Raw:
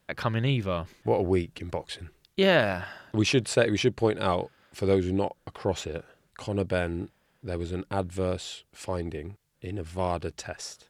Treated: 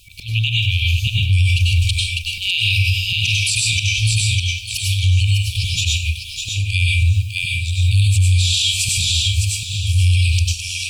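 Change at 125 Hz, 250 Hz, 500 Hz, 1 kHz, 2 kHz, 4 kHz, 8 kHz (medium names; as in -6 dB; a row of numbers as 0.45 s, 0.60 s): +17.0 dB, under -10 dB, under -35 dB, under -35 dB, +12.5 dB, +19.0 dB, +19.5 dB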